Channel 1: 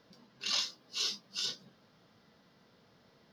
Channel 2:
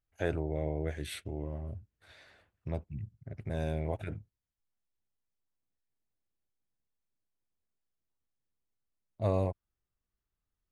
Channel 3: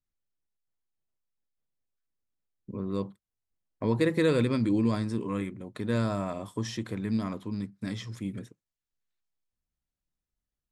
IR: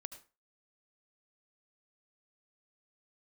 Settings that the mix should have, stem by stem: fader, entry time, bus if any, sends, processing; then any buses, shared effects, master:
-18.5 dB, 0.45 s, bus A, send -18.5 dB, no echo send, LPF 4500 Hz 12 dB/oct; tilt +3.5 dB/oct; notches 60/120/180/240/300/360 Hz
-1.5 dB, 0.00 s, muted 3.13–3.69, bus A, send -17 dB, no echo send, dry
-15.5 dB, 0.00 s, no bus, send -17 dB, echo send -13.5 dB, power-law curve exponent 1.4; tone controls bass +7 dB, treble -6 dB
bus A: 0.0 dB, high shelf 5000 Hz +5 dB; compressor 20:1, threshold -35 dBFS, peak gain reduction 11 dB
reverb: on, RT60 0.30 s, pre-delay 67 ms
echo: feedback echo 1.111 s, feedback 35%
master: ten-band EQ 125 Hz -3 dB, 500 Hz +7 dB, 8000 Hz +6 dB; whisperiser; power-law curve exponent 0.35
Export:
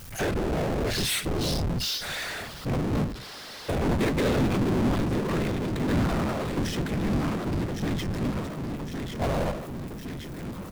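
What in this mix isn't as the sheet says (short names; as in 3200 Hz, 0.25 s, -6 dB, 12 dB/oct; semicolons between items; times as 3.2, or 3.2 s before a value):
stem 3 -15.5 dB -> -7.0 dB; master: missing ten-band EQ 125 Hz -3 dB, 500 Hz +7 dB, 8000 Hz +6 dB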